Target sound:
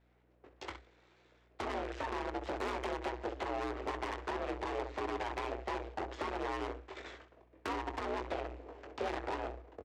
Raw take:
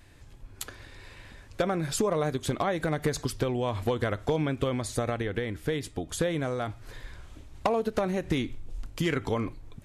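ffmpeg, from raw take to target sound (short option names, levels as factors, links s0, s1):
-af "agate=range=0.1:threshold=0.00891:ratio=16:detection=peak,highpass=f=120:w=0.5412,highpass=f=120:w=1.3066,equalizer=f=200:t=q:w=4:g=-4,equalizer=f=310:t=q:w=4:g=6,equalizer=f=470:t=q:w=4:g=6,equalizer=f=710:t=q:w=4:g=-4,equalizer=f=1000:t=q:w=4:g=-7,lowpass=f=2100:w=0.5412,lowpass=f=2100:w=1.3066,acompressor=threshold=0.0355:ratio=12,aresample=16000,aeval=exprs='abs(val(0))':c=same,aresample=44100,afreqshift=61,aecho=1:1:21|65:0.473|0.282,asoftclip=type=tanh:threshold=0.0106,lowshelf=f=250:t=q:w=3:g=-12,aeval=exprs='val(0)+0.000158*(sin(2*PI*60*n/s)+sin(2*PI*2*60*n/s)/2+sin(2*PI*3*60*n/s)/3+sin(2*PI*4*60*n/s)/4+sin(2*PI*5*60*n/s)/5)':c=same,volume=2.11"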